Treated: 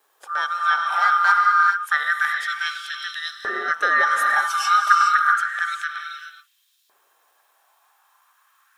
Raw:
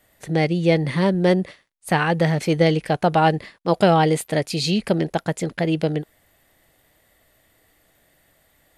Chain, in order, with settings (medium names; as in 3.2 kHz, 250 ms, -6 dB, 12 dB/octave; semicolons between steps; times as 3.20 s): split-band scrambler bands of 1 kHz; 0.92–1.32 s: waveshaping leveller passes 1; 3.90–5.12 s: comb 4.9 ms, depth 77%; gated-style reverb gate 450 ms rising, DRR 2.5 dB; word length cut 10-bit, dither none; LFO high-pass saw up 0.29 Hz 400–4000 Hz; trim -6.5 dB